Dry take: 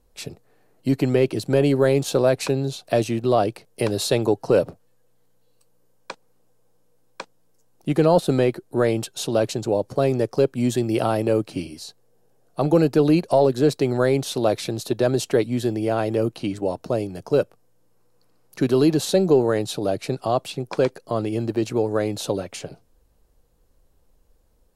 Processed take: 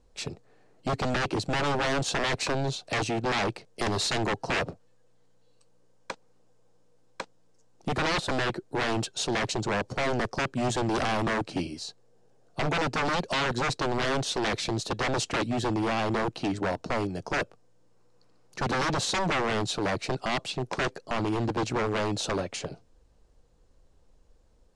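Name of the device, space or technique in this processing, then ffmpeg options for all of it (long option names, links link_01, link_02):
synthesiser wavefolder: -af "aeval=exprs='0.0841*(abs(mod(val(0)/0.0841+3,4)-2)-1)':channel_layout=same,lowpass=frequency=8000:width=0.5412,lowpass=frequency=8000:width=1.3066"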